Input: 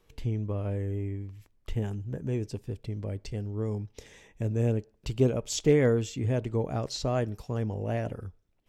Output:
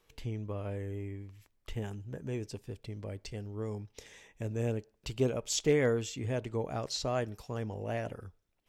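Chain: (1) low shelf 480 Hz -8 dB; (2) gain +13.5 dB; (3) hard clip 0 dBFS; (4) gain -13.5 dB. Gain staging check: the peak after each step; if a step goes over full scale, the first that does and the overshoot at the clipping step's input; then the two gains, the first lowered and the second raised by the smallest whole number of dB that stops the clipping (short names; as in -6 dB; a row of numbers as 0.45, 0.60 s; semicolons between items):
-16.5, -3.0, -3.0, -16.5 dBFS; no overload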